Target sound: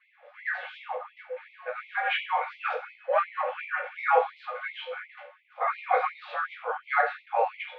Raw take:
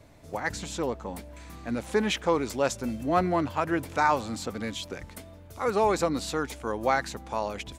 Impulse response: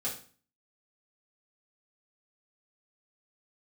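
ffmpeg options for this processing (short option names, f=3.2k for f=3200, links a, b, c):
-filter_complex "[0:a]highpass=f=310:t=q:w=0.5412,highpass=f=310:t=q:w=1.307,lowpass=f=2.8k:t=q:w=0.5176,lowpass=f=2.8k:t=q:w=0.7071,lowpass=f=2.8k:t=q:w=1.932,afreqshift=-81[a];[1:a]atrim=start_sample=2205[b];[a][b]afir=irnorm=-1:irlink=0,afftfilt=real='re*gte(b*sr/1024,460*pow(2000/460,0.5+0.5*sin(2*PI*2.8*pts/sr)))':imag='im*gte(b*sr/1024,460*pow(2000/460,0.5+0.5*sin(2*PI*2.8*pts/sr)))':win_size=1024:overlap=0.75,volume=3.5dB"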